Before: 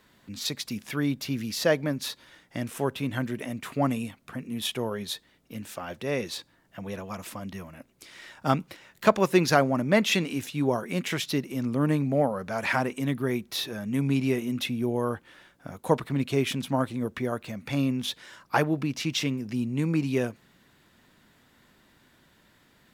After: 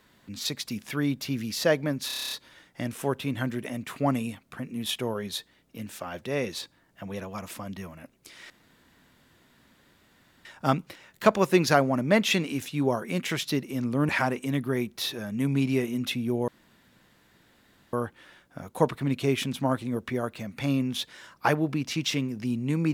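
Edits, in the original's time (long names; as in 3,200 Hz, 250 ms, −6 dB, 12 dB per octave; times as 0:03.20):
0:02.07: stutter 0.03 s, 9 plays
0:08.26: splice in room tone 1.95 s
0:11.90–0:12.63: remove
0:15.02: splice in room tone 1.45 s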